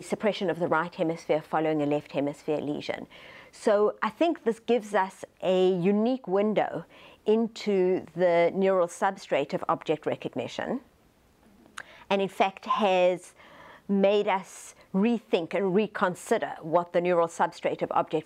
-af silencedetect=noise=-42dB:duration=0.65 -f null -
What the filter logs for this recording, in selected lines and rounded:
silence_start: 10.80
silence_end: 11.66 | silence_duration: 0.86